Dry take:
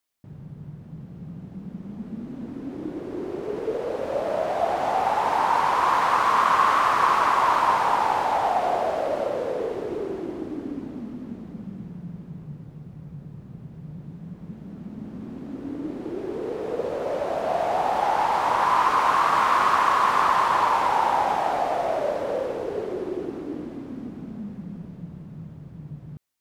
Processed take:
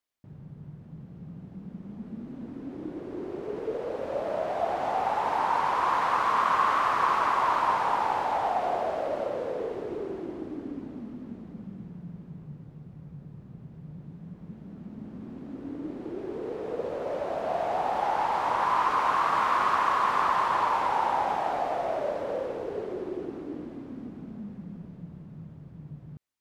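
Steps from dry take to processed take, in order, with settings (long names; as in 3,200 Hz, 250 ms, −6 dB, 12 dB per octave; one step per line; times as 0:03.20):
high-shelf EQ 5,700 Hz −6.5 dB
level −4.5 dB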